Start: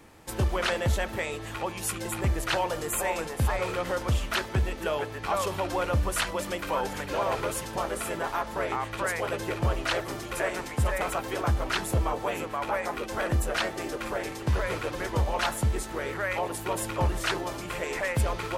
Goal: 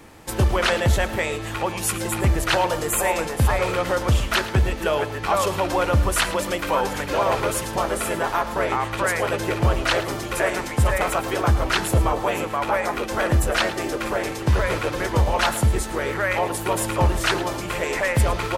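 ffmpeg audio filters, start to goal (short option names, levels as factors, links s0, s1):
-af "aecho=1:1:109:0.188,volume=2.24"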